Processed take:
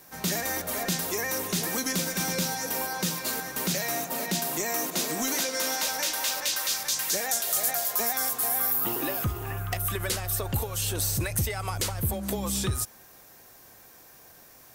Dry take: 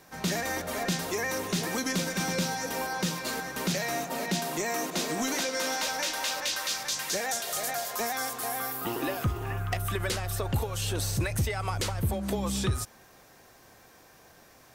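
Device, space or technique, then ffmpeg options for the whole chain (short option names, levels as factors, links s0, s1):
behind a face mask: -af "aemphasis=mode=production:type=75fm,highshelf=f=3000:g=-7"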